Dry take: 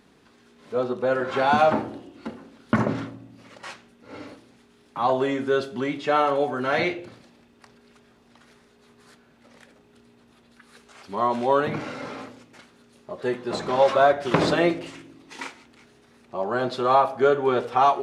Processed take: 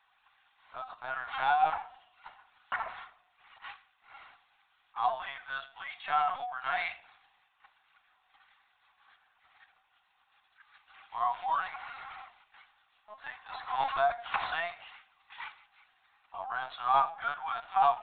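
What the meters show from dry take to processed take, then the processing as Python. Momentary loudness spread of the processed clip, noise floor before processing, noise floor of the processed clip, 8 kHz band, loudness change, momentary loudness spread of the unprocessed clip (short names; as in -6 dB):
21 LU, -58 dBFS, -72 dBFS, n/a, -10.0 dB, 20 LU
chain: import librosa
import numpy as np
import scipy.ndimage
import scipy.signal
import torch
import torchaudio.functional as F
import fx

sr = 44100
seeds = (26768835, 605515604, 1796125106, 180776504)

y = scipy.signal.sosfilt(scipy.signal.cheby1(5, 1.0, 730.0, 'highpass', fs=sr, output='sos'), x)
y = fx.lpc_vocoder(y, sr, seeds[0], excitation='pitch_kept', order=16)
y = y * 10.0 ** (-5.5 / 20.0)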